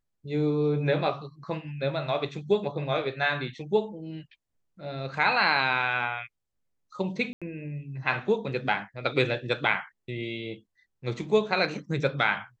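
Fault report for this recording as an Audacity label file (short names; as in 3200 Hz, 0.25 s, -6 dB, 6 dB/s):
7.330000	7.420000	gap 86 ms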